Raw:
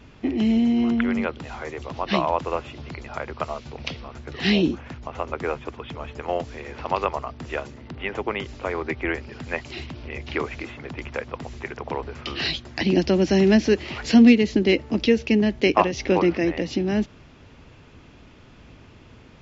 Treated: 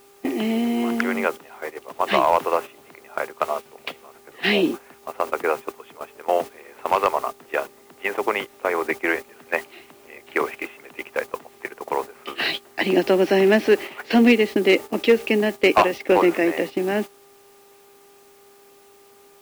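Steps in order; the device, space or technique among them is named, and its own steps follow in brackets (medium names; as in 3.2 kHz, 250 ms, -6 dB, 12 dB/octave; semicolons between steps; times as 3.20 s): 10.53–11.12 s: peaking EQ 2.7 kHz +6.5 dB 0.6 oct; aircraft radio (band-pass 400–2700 Hz; hard clipper -14.5 dBFS, distortion -17 dB; mains buzz 400 Hz, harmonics 3, -48 dBFS -8 dB/octave; white noise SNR 22 dB; gate -33 dBFS, range -12 dB); trim +6.5 dB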